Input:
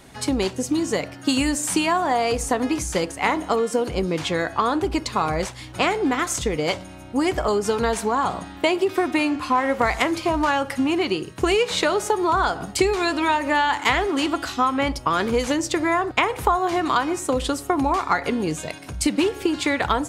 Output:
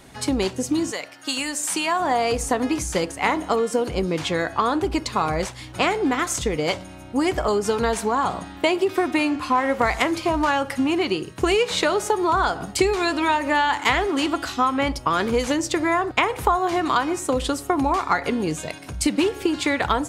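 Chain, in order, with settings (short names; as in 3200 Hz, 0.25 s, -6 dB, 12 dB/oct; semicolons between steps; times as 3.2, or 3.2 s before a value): 0.9–1.99 HPF 1400 Hz -> 510 Hz 6 dB/oct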